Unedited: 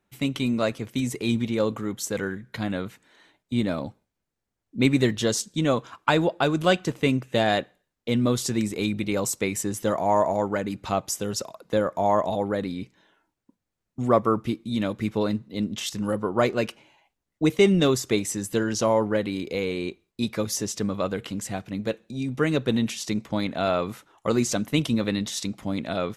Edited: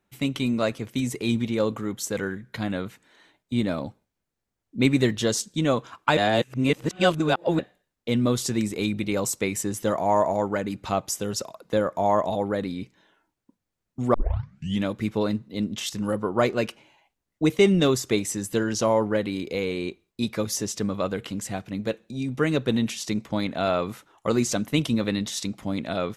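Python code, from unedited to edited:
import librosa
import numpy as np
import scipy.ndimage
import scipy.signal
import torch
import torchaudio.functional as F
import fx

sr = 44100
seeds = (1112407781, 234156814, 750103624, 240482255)

y = fx.edit(x, sr, fx.reverse_span(start_s=6.17, length_s=1.42),
    fx.tape_start(start_s=14.14, length_s=0.7), tone=tone)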